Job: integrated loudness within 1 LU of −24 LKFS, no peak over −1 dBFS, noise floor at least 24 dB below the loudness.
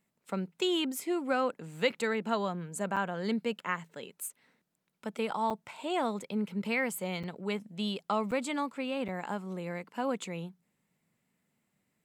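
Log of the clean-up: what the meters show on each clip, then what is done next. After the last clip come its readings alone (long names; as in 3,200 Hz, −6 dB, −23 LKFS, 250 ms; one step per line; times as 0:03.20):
number of dropouts 5; longest dropout 6.7 ms; integrated loudness −33.5 LKFS; sample peak −16.0 dBFS; target loudness −24.0 LKFS
→ repair the gap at 0:02.96/0:05.50/0:07.23/0:08.31/0:09.08, 6.7 ms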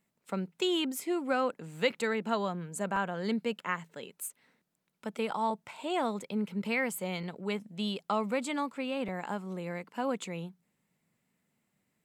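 number of dropouts 0; integrated loudness −33.5 LKFS; sample peak −16.0 dBFS; target loudness −24.0 LKFS
→ level +9.5 dB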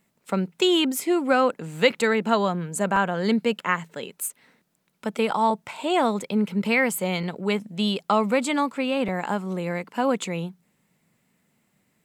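integrated loudness −24.0 LKFS; sample peak −6.5 dBFS; background noise floor −70 dBFS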